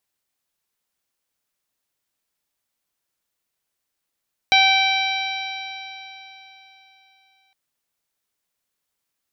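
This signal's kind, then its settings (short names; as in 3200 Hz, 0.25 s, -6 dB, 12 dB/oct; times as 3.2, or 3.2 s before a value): stretched partials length 3.01 s, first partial 771 Hz, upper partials -9/2/-6/0/-16/-13.5 dB, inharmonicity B 0.0015, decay 3.57 s, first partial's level -16.5 dB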